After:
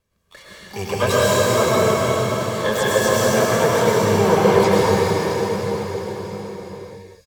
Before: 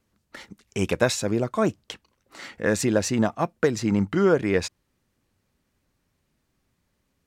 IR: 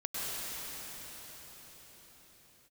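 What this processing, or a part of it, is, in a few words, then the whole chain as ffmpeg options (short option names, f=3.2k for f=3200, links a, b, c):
shimmer-style reverb: -filter_complex "[0:a]asettb=1/sr,asplit=3[a][b][c];[a]atrim=end=2.704[d];[b]atrim=start=2.7:end=3.55,asetpts=PTS-STARTPTS,afade=t=in:d=0.004:c=qsin,afade=t=out:st=0.846:d=0.004:c=qsin,highpass=f=130:p=1[e];[c]atrim=start=3.546[f];[d][e]acrossfade=d=0.004:c1=hsin:c2=qsin[g];[g][f]acrossfade=d=0.004:c1=qsin:c2=hsin,aecho=1:1:1.8:0.75,asplit=3[h][i][j];[h]afade=t=out:st=0.63:d=0.02[k];[i]highpass=f=66:w=0.5412,highpass=f=66:w=1.3066,afade=t=in:st=0.63:d=0.02,afade=t=out:st=1.07:d=0.02[l];[j]afade=t=in:st=1.07:d=0.02[m];[k][l][m]amix=inputs=3:normalize=0,asplit=2[n][o];[o]asetrate=88200,aresample=44100,atempo=0.5,volume=-6dB[p];[n][p]amix=inputs=2:normalize=0[q];[1:a]atrim=start_sample=2205[r];[q][r]afir=irnorm=-1:irlink=0,volume=-1dB"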